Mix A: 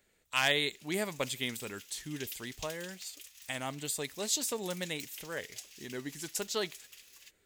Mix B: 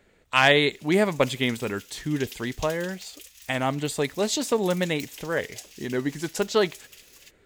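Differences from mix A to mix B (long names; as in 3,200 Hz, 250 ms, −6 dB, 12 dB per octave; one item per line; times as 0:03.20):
speech: remove first-order pre-emphasis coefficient 0.8
background +4.5 dB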